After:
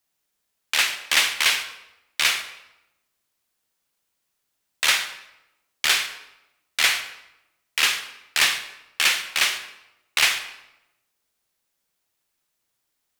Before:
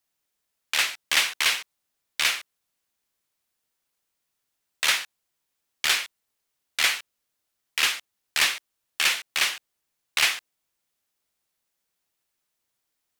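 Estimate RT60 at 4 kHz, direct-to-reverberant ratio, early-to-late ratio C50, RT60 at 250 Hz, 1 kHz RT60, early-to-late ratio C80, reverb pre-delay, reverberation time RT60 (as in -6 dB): 0.70 s, 9.0 dB, 10.5 dB, 1.0 s, 0.90 s, 12.5 dB, 32 ms, 0.95 s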